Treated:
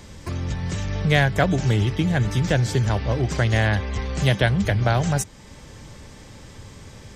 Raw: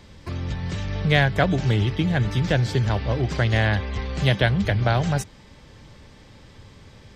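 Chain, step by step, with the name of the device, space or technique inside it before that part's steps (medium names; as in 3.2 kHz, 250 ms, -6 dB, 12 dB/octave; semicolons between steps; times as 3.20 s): parallel compression (in parallel at -2.5 dB: compression, threshold -38 dBFS, peak gain reduction 22.5 dB); on the sum: resonant high shelf 5.4 kHz +6 dB, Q 1.5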